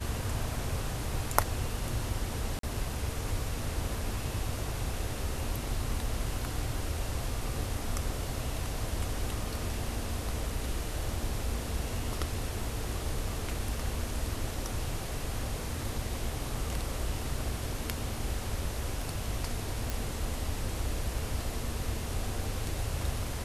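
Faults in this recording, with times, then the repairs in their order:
0:02.59–0:02.63: drop-out 43 ms
0:19.90: click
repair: click removal
repair the gap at 0:02.59, 43 ms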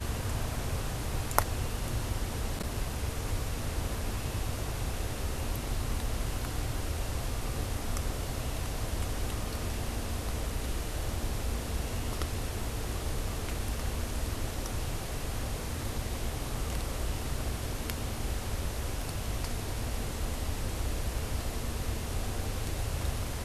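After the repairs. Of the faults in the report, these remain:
0:19.90: click

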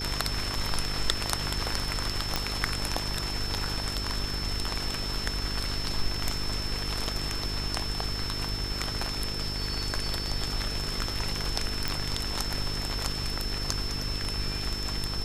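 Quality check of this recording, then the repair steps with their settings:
mains buzz 50 Hz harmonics 9 −36 dBFS
whistle 5,300 Hz −34 dBFS
0:02.36: click −10 dBFS
0:11.88: click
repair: click removal
hum removal 50 Hz, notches 9
notch filter 5,300 Hz, Q 30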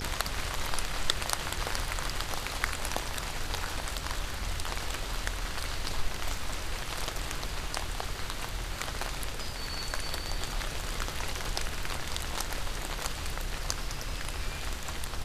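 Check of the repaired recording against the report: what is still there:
none of them is left

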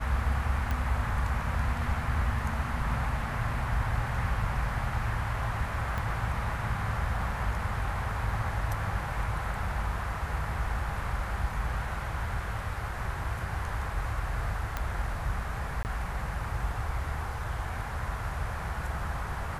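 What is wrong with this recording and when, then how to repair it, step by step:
0:00.71: click
0:05.98: click
0:14.77: click −17 dBFS
0:15.83–0:15.85: drop-out 19 ms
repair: click removal
repair the gap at 0:15.83, 19 ms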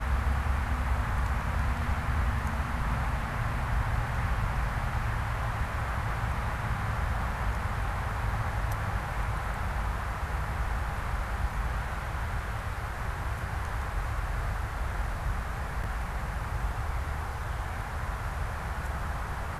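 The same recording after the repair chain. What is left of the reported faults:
0:05.98: click

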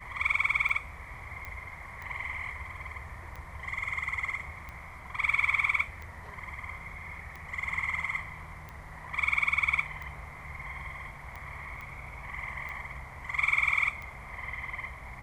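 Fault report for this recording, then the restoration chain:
scratch tick 45 rpm
0:01.45: click −25 dBFS
0:11.81: click −30 dBFS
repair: click removal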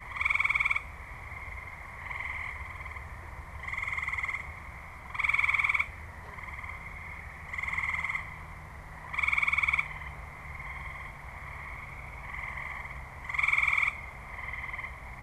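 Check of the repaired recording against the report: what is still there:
none of them is left

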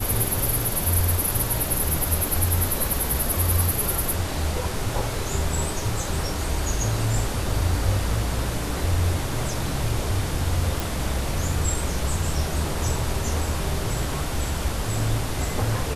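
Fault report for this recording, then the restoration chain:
0:10.80: click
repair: click removal

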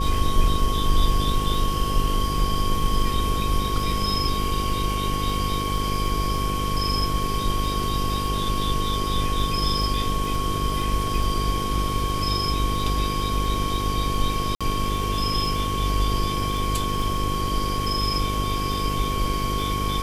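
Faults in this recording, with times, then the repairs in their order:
mains buzz 50 Hz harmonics 10 −28 dBFS
surface crackle 35 per second −30 dBFS
whistle 1,100 Hz −27 dBFS
0:14.55–0:14.61: drop-out 56 ms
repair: click removal
hum removal 50 Hz, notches 10
notch filter 1,100 Hz, Q 30
repair the gap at 0:14.55, 56 ms

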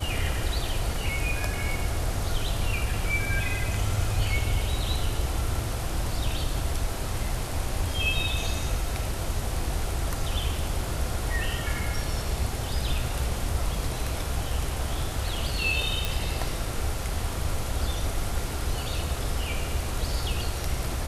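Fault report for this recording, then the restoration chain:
0:16.05: click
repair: click removal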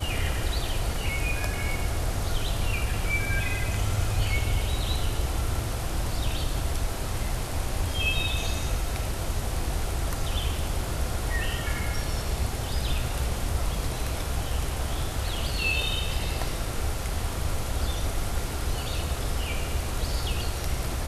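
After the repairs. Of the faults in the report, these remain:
none of them is left

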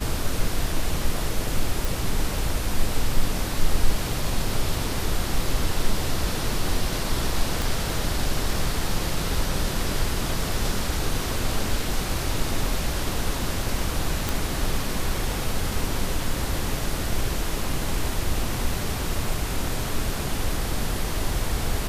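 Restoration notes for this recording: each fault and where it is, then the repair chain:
0:01.85: click
0:07.62: click
0:14.29: click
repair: click removal

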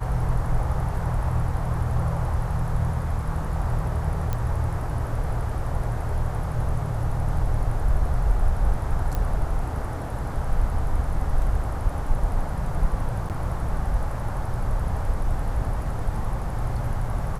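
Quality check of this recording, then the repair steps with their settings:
0:04.33: click −14 dBFS
0:09.15: click −15 dBFS
0:13.29–0:13.30: drop-out 8.5 ms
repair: click removal
repair the gap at 0:13.29, 8.5 ms

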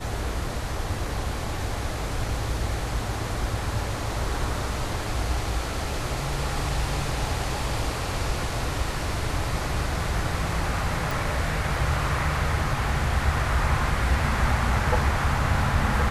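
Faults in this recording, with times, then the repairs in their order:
0:11.11: click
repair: click removal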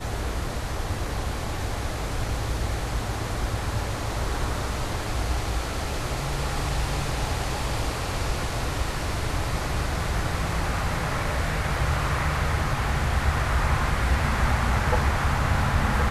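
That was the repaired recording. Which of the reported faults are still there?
none of them is left

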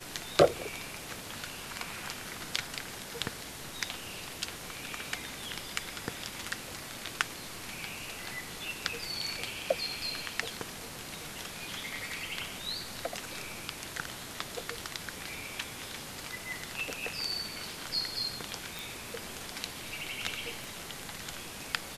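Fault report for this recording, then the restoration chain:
0:18.79: click
0:20.64: click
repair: click removal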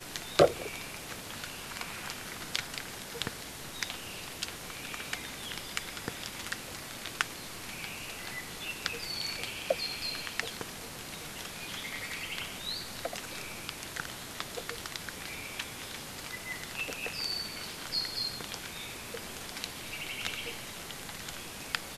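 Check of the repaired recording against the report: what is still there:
0:20.64: click

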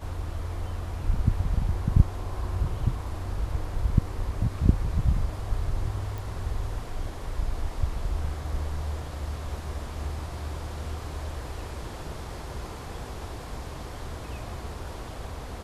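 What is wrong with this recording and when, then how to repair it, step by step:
0:06.18: click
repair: click removal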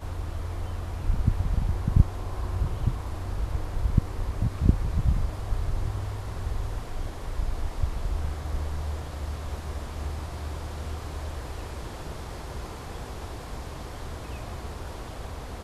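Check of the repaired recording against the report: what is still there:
0:06.18: click

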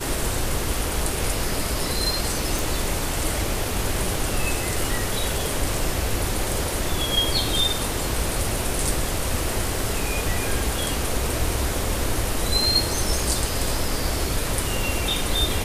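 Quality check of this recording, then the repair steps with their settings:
0:02.59: click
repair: click removal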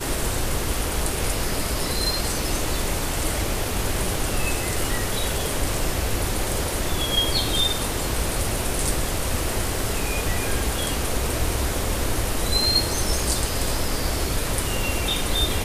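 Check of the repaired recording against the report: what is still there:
none of them is left

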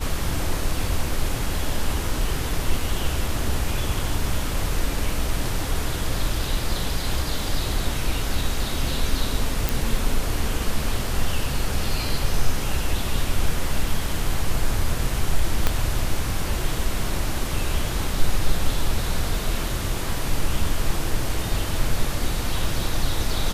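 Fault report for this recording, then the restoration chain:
0:09.69: click
0:15.67: click −5 dBFS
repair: click removal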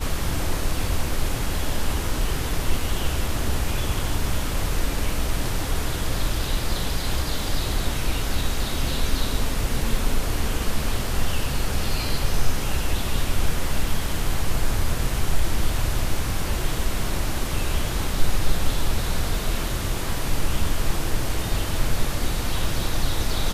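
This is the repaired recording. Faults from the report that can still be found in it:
0:15.67: click

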